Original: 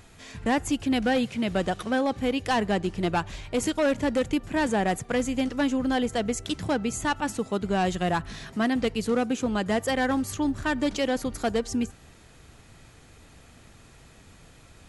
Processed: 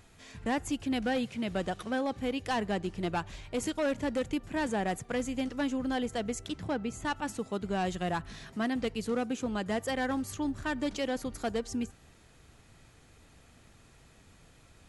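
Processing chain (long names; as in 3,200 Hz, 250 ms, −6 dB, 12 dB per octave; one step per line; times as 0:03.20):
0:06.48–0:07.05: high-shelf EQ 4,600 Hz −9 dB
level −6.5 dB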